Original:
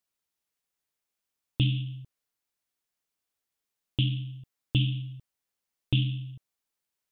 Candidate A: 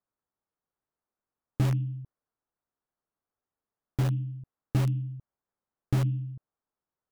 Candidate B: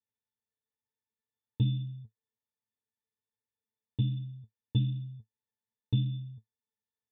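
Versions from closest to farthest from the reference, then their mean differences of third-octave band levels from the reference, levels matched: B, A; 2.5 dB, 6.0 dB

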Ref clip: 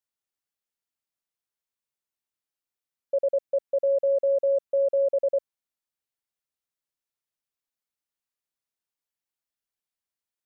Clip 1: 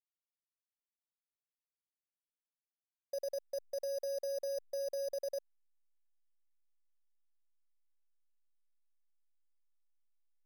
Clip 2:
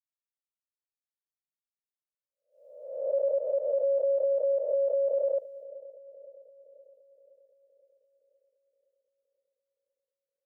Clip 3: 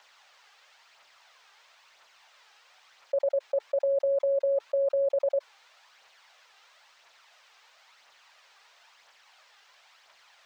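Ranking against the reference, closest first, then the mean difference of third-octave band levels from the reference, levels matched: 2, 3, 1; 1.0 dB, 2.5 dB, 8.0 dB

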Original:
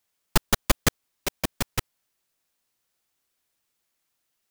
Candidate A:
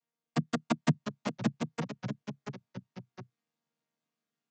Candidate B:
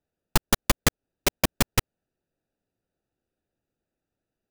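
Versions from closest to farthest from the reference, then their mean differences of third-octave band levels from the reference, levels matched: B, A; 3.0 dB, 13.0 dB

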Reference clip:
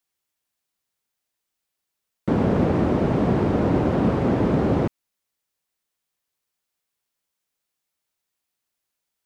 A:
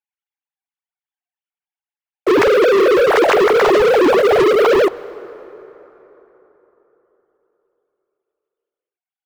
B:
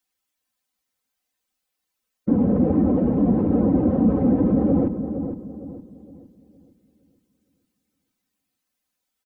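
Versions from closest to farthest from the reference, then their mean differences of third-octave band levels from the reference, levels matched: B, A; 9.5 dB, 12.5 dB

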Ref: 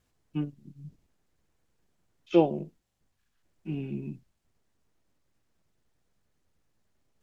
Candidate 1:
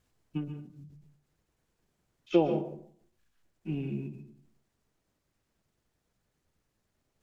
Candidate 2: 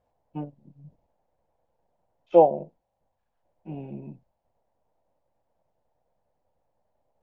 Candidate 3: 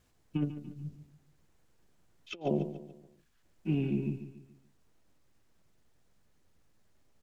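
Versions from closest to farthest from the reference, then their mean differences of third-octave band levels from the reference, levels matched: 1, 2, 3; 3.0 dB, 4.5 dB, 6.5 dB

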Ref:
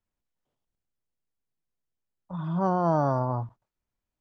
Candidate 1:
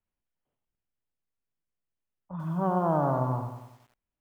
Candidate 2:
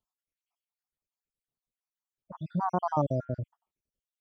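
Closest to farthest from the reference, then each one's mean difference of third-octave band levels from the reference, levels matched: 1, 2; 4.5 dB, 8.0 dB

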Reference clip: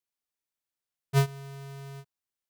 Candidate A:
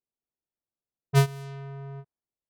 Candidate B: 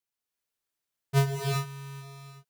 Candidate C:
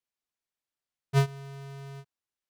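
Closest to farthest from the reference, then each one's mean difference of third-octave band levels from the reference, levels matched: C, A, B; 1.5 dB, 3.0 dB, 5.5 dB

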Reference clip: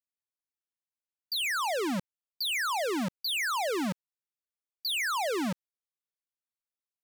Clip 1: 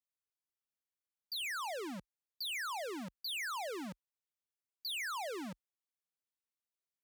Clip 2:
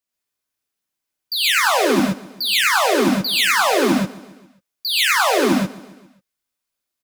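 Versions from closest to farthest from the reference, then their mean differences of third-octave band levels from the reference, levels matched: 1, 2; 1.0 dB, 8.5 dB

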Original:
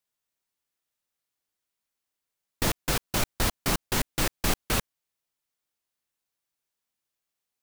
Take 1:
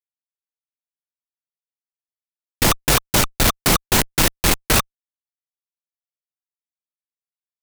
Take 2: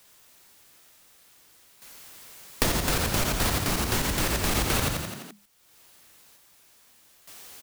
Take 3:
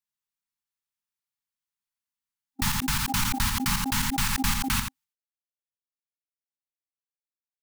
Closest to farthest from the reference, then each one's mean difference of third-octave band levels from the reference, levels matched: 1, 2, 3; 1.5 dB, 6.5 dB, 9.0 dB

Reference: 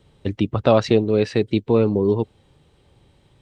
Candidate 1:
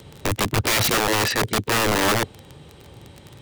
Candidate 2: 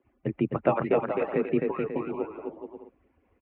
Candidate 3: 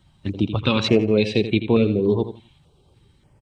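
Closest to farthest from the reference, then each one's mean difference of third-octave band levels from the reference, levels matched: 3, 2, 1; 4.0 dB, 8.5 dB, 19.5 dB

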